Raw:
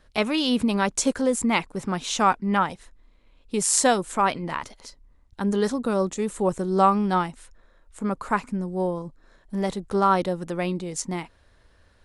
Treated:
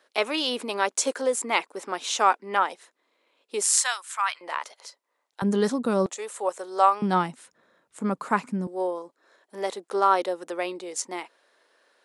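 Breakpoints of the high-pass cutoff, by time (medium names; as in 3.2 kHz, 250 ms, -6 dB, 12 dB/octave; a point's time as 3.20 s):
high-pass 24 dB/octave
360 Hz
from 3.66 s 1.1 kHz
from 4.41 s 490 Hz
from 5.42 s 120 Hz
from 6.06 s 500 Hz
from 7.02 s 150 Hz
from 8.67 s 360 Hz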